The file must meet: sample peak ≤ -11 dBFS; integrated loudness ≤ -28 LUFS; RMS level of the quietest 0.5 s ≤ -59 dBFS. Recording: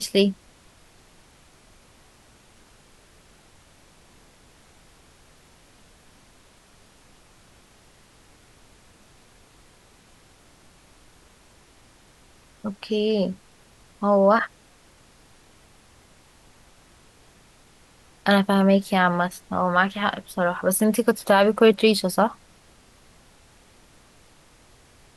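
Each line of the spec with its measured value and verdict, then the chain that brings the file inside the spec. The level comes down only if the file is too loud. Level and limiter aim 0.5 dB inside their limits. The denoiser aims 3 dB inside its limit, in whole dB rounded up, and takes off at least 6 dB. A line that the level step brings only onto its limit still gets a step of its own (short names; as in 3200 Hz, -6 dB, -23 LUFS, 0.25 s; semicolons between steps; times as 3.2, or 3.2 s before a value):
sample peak -5.5 dBFS: fail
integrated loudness -21.5 LUFS: fail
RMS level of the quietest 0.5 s -54 dBFS: fail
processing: gain -7 dB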